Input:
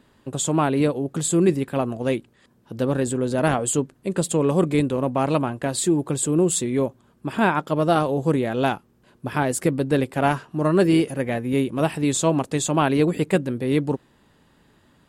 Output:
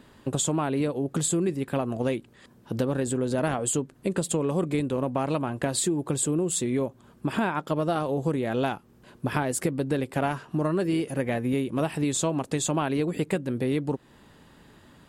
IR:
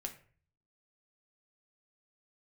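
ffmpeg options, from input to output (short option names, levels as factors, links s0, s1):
-af "acompressor=threshold=0.0398:ratio=6,volume=1.68"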